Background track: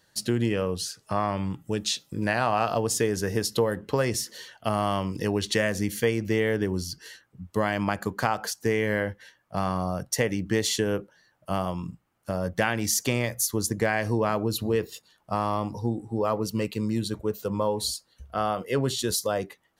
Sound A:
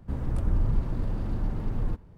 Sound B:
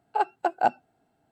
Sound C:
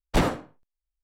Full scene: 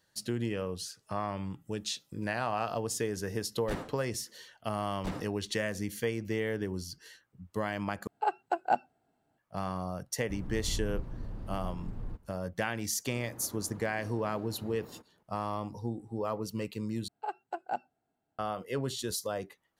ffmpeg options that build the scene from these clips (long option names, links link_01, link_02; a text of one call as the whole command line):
ffmpeg -i bed.wav -i cue0.wav -i cue1.wav -i cue2.wav -filter_complex "[3:a]asplit=2[link_01][link_02];[2:a]asplit=2[link_03][link_04];[1:a]asplit=2[link_05][link_06];[0:a]volume=-8dB[link_07];[link_06]highpass=290[link_08];[link_07]asplit=3[link_09][link_10][link_11];[link_09]atrim=end=8.074[link_12];[link_03]atrim=end=1.31,asetpts=PTS-STARTPTS,volume=-5dB[link_13];[link_10]atrim=start=9.376:end=17.084[link_14];[link_04]atrim=end=1.31,asetpts=PTS-STARTPTS,volume=-12dB[link_15];[link_11]atrim=start=18.386[link_16];[link_01]atrim=end=1.03,asetpts=PTS-STARTPTS,volume=-16dB,afade=type=in:duration=0.004:curve=hsin,afade=type=out:start_time=1.026:duration=0.004:curve=hsin,adelay=3540[link_17];[link_02]atrim=end=1.03,asetpts=PTS-STARTPTS,volume=-17.5dB,afade=type=in:duration=0.004:curve=hsin,afade=type=out:start_time=1.026:duration=0.004:curve=hsin,adelay=4900[link_18];[link_05]atrim=end=2.17,asetpts=PTS-STARTPTS,volume=-11dB,afade=type=in:duration=0.004:curve=hsin,afade=type=out:start_time=2.166:duration=0.004:curve=hsin,adelay=10210[link_19];[link_08]atrim=end=2.17,asetpts=PTS-STARTPTS,volume=-9dB,afade=type=in:duration=0.004:curve=hsin,afade=type=out:start_time=2.166:duration=0.004:curve=hsin,adelay=13060[link_20];[link_12][link_13]acrossfade=duration=0.004:curve1=hsin:curve2=hsin[link_21];[link_21][link_14]acrossfade=duration=0.004:curve1=hsin:curve2=hsin[link_22];[link_22][link_15]acrossfade=duration=0.004:curve1=hsin:curve2=hsin[link_23];[link_23][link_16]acrossfade=duration=0.004:curve1=hsin:curve2=hsin[link_24];[link_24][link_17][link_18][link_19][link_20]amix=inputs=5:normalize=0" out.wav